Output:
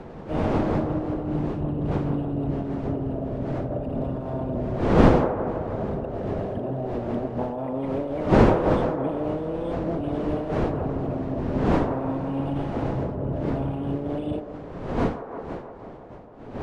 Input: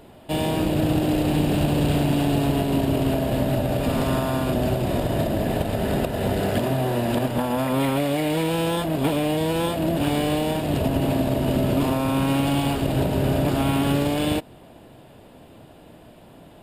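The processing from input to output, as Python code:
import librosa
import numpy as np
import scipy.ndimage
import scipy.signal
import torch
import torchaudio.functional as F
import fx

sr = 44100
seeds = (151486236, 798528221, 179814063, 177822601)

p1 = fx.envelope_sharpen(x, sr, power=2.0)
p2 = fx.dmg_wind(p1, sr, seeds[0], corner_hz=470.0, level_db=-21.0)
p3 = scipy.signal.sosfilt(scipy.signal.butter(2, 10000.0, 'lowpass', fs=sr, output='sos'), p2)
p4 = p3 + fx.echo_wet_bandpass(p3, sr, ms=163, feedback_pct=67, hz=740.0, wet_db=-6.0, dry=0)
p5 = fx.am_noise(p4, sr, seeds[1], hz=5.7, depth_pct=50)
y = F.gain(torch.from_numpy(p5), -4.5).numpy()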